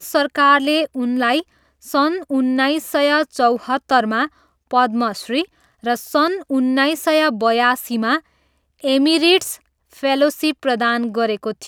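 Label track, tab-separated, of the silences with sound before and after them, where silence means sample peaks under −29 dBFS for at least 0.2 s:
1.410000	1.860000	silence
4.270000	4.710000	silence
5.440000	5.840000	silence
8.190000	8.840000	silence
9.550000	9.970000	silence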